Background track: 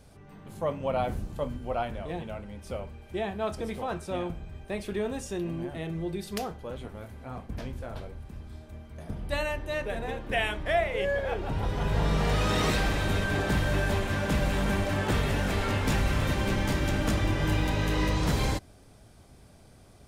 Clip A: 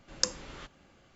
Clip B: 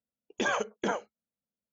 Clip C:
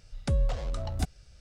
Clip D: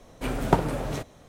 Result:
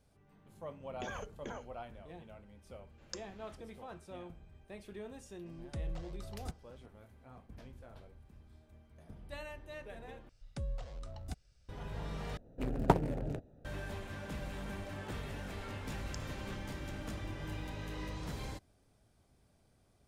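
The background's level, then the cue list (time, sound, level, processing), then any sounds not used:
background track -15.5 dB
0.62 add B -7 dB + compressor, threshold -33 dBFS
2.9 add A -14.5 dB + tone controls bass +3 dB, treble -4 dB
5.46 add C -13.5 dB
10.29 replace with C -13 dB
12.37 replace with D -5.5 dB + Wiener smoothing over 41 samples
15.91 add A -1 dB + compressor, threshold -46 dBFS

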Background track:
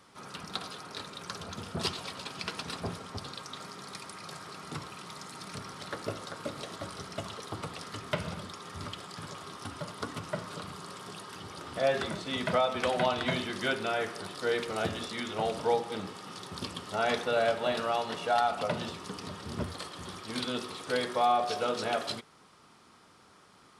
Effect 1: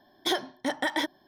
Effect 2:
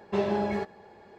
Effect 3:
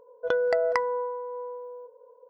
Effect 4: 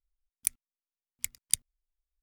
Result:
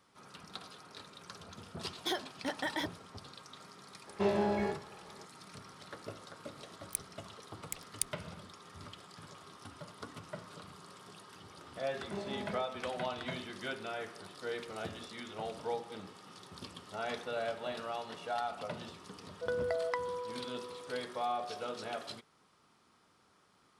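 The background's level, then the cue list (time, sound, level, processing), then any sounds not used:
background track -9.5 dB
1.8 add 1 -8 dB
4.07 add 2 -4 dB + spectral trails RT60 0.31 s
6.48 add 4 -8 dB
11.99 add 2 -14.5 dB
19.18 add 3 -10 dB

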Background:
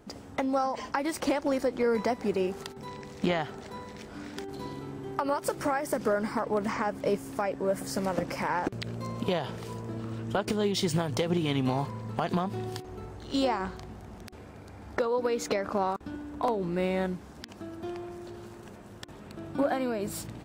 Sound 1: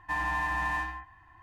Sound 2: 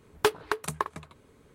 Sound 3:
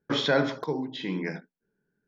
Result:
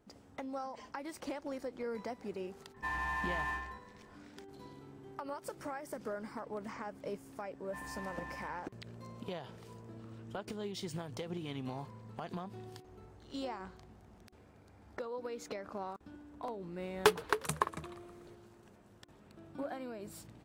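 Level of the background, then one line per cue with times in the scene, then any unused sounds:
background -13.5 dB
2.74 add 1 -6 dB + bell 470 Hz -7.5 dB
7.64 add 1 -16.5 dB
16.81 add 2 -2.5 dB + frequency-shifting echo 0.119 s, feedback 58%, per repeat +38 Hz, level -20.5 dB
not used: 3

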